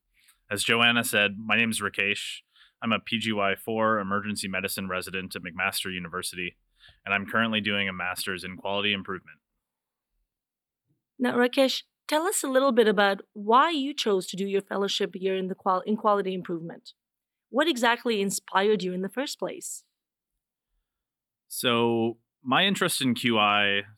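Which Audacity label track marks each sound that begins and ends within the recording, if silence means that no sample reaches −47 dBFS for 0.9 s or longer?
11.190000	19.800000	sound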